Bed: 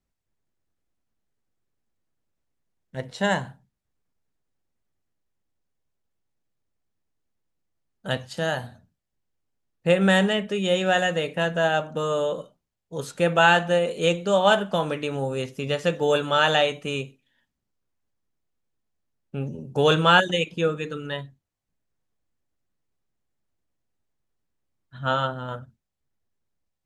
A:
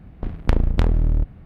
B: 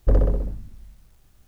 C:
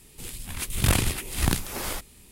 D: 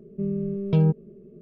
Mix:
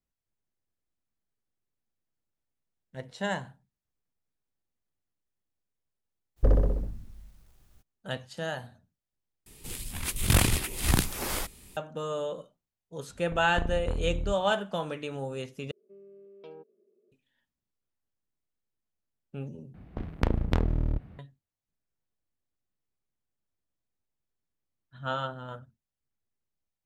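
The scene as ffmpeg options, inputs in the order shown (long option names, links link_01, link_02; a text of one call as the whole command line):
ffmpeg -i bed.wav -i cue0.wav -i cue1.wav -i cue2.wav -i cue3.wav -filter_complex "[1:a]asplit=2[link_01][link_02];[0:a]volume=-8dB[link_03];[link_01]lowpass=1800[link_04];[4:a]highpass=frequency=350:width=0.5412,highpass=frequency=350:width=1.3066[link_05];[link_02]highpass=frequency=74:poles=1[link_06];[link_03]asplit=4[link_07][link_08][link_09][link_10];[link_07]atrim=end=9.464[link_11];[3:a]atrim=end=2.31,asetpts=PTS-STARTPTS,volume=-0.5dB[link_12];[link_08]atrim=start=11.766:end=15.714[link_13];[link_05]atrim=end=1.41,asetpts=PTS-STARTPTS,volume=-17dB[link_14];[link_09]atrim=start=17.116:end=19.744[link_15];[link_06]atrim=end=1.45,asetpts=PTS-STARTPTS,volume=-4dB[link_16];[link_10]atrim=start=21.186[link_17];[2:a]atrim=end=1.47,asetpts=PTS-STARTPTS,volume=-4dB,afade=type=in:duration=0.02,afade=type=out:start_time=1.45:duration=0.02,adelay=6360[link_18];[link_04]atrim=end=1.45,asetpts=PTS-STARTPTS,volume=-13.5dB,afade=type=in:duration=0.004:curve=hsin,afade=type=out:start_time=1.446:duration=0.004:curve=hsin,adelay=13090[link_19];[link_11][link_12]acrossfade=duration=0.004:curve1=hsin:curve2=hsin[link_20];[link_20][link_13]acrossfade=duration=0.004:curve1=hsin:curve2=hsin[link_21];[link_21][link_14]acrossfade=duration=0.004:curve1=hsin:curve2=hsin[link_22];[link_22][link_15]acrossfade=duration=0.004:curve1=hsin:curve2=hsin[link_23];[link_23][link_16]acrossfade=duration=0.004:curve1=hsin:curve2=hsin[link_24];[link_24][link_17]acrossfade=duration=0.004:curve1=hsin:curve2=hsin[link_25];[link_25][link_18][link_19]amix=inputs=3:normalize=0" out.wav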